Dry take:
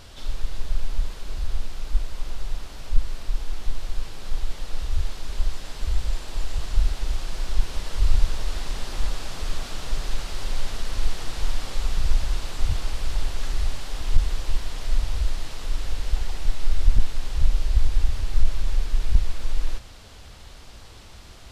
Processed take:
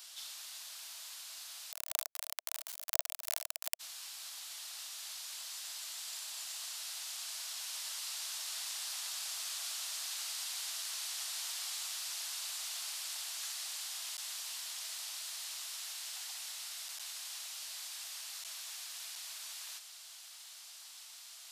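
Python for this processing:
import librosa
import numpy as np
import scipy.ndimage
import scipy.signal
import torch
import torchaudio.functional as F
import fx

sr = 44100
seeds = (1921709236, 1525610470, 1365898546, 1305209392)

y = fx.halfwave_hold(x, sr, at=(1.71, 3.79), fade=0.02)
y = scipy.signal.sosfilt(scipy.signal.cheby1(5, 1.0, 640.0, 'highpass', fs=sr, output='sos'), y)
y = np.diff(y, prepend=0.0)
y = F.gain(torch.from_numpy(y), 4.0).numpy()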